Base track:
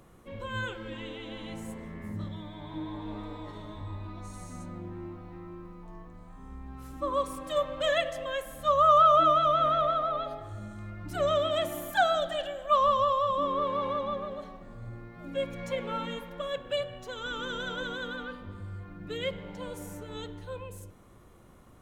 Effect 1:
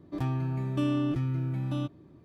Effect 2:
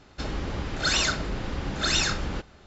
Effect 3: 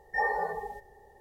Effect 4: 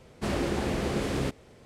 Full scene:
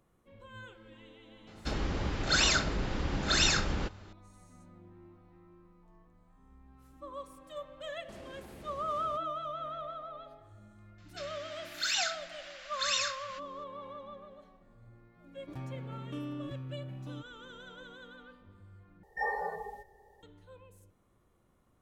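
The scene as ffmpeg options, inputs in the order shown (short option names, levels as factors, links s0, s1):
-filter_complex "[2:a]asplit=2[s0][s1];[0:a]volume=0.188[s2];[4:a]acompressor=threshold=0.0251:ratio=6:attack=3.2:release=140:knee=1:detection=peak[s3];[s1]highpass=f=1500:w=0.5412,highpass=f=1500:w=1.3066[s4];[s2]asplit=2[s5][s6];[s5]atrim=end=19.034[s7];[3:a]atrim=end=1.2,asetpts=PTS-STARTPTS,volume=0.562[s8];[s6]atrim=start=20.226[s9];[s0]atrim=end=2.66,asetpts=PTS-STARTPTS,volume=0.794,afade=t=in:d=0.004:c=hsin,afade=t=out:st=2.656:d=0.004:c=hsin,adelay=1470[s10];[s3]atrim=end=1.65,asetpts=PTS-STARTPTS,volume=0.2,afade=t=in:d=0.004:c=hsin,afade=t=out:st=1.646:d=0.004:c=hsin,adelay=7870[s11];[s4]atrim=end=2.66,asetpts=PTS-STARTPTS,volume=0.501,afade=t=in:d=0.004:c=hsin,afade=t=out:st=2.656:d=0.004:c=hsin,adelay=484218S[s12];[1:a]atrim=end=2.24,asetpts=PTS-STARTPTS,volume=0.251,afade=t=in:d=0.004:c=hsin,afade=t=out:st=2.236:d=0.004:c=hsin,adelay=15350[s13];[s7][s8]acrossfade=d=0.004:c1=hsin:c2=hsin[s14];[s14][s9]acrossfade=d=0.004:c1=hsin:c2=hsin[s15];[s15][s10][s11][s12][s13]amix=inputs=5:normalize=0"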